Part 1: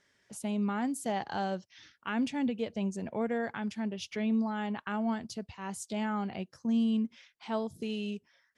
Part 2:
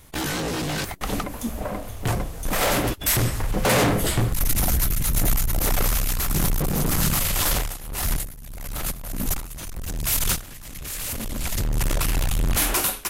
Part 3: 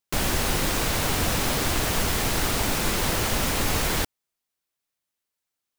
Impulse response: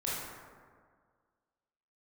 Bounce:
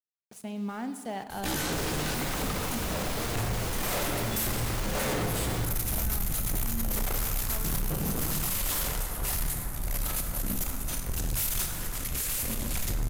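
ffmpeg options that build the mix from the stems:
-filter_complex "[0:a]aeval=exprs='val(0)*gte(abs(val(0)),0.00708)':c=same,volume=0.596,asplit=2[s0][s1];[s1]volume=0.224[s2];[1:a]highshelf=f=6800:g=6,asoftclip=type=tanh:threshold=0.112,adelay=1300,volume=0.891,asplit=2[s3][s4];[s4]volume=0.562[s5];[2:a]adelay=1600,volume=0.596,asplit=2[s6][s7];[s7]volume=0.501[s8];[3:a]atrim=start_sample=2205[s9];[s2][s5][s8]amix=inputs=3:normalize=0[s10];[s10][s9]afir=irnorm=-1:irlink=0[s11];[s0][s3][s6][s11]amix=inputs=4:normalize=0,asoftclip=type=tanh:threshold=0.282,alimiter=limit=0.075:level=0:latency=1:release=214"

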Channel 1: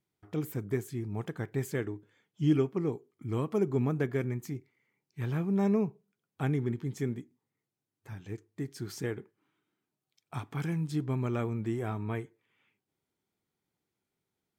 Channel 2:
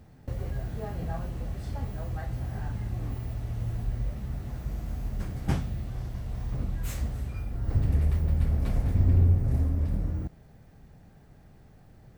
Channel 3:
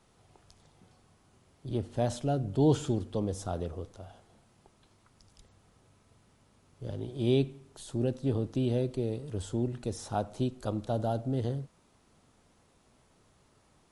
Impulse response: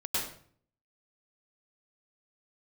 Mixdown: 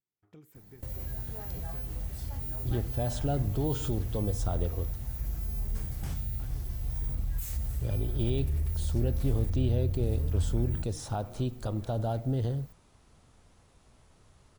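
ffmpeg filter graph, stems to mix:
-filter_complex "[0:a]acompressor=threshold=0.0178:ratio=6,volume=0.188[s0];[1:a]aemphasis=mode=production:type=75fm,alimiter=limit=0.0668:level=0:latency=1,adelay=550,volume=0.501[s1];[2:a]alimiter=limit=0.0708:level=0:latency=1:release=136,adelay=1000,volume=1.26,asplit=3[s2][s3][s4];[s2]atrim=end=4.96,asetpts=PTS-STARTPTS,afade=t=out:st=4.956:d=0.004:c=hsin[s5];[s3]atrim=start=4.96:end=7.77,asetpts=PTS-STARTPTS,volume=0[s6];[s4]atrim=start=7.77,asetpts=PTS-STARTPTS,afade=t=in:d=0.004:c=hsin[s7];[s5][s6][s7]concat=n=3:v=0:a=1[s8];[s0][s1][s8]amix=inputs=3:normalize=0,asubboost=boost=2.5:cutoff=120"

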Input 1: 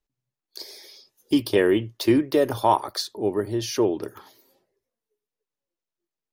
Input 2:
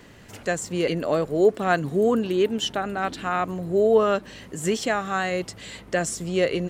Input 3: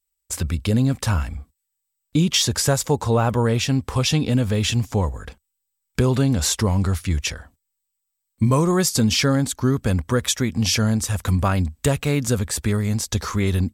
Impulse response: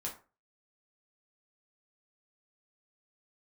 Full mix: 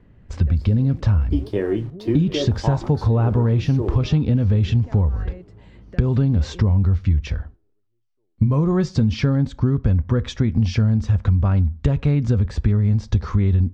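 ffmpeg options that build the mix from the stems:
-filter_complex "[0:a]acrusher=bits=6:mix=0:aa=0.000001,volume=0.335,asplit=3[s0][s1][s2];[s1]volume=0.473[s3];[s2]volume=0.224[s4];[1:a]bass=f=250:g=2,treble=f=4000:g=-9,acompressor=threshold=0.0355:ratio=6,volume=0.237[s5];[2:a]lowpass=f=5800:w=0.5412,lowpass=f=5800:w=1.3066,volume=0.708,asplit=2[s6][s7];[s7]volume=0.178[s8];[3:a]atrim=start_sample=2205[s9];[s3][s8]amix=inputs=2:normalize=0[s10];[s10][s9]afir=irnorm=-1:irlink=0[s11];[s4]aecho=0:1:732|1464|2196|2928|3660|4392:1|0.43|0.185|0.0795|0.0342|0.0147[s12];[s0][s5][s6][s11][s12]amix=inputs=5:normalize=0,aemphasis=mode=reproduction:type=riaa,acompressor=threshold=0.2:ratio=6"

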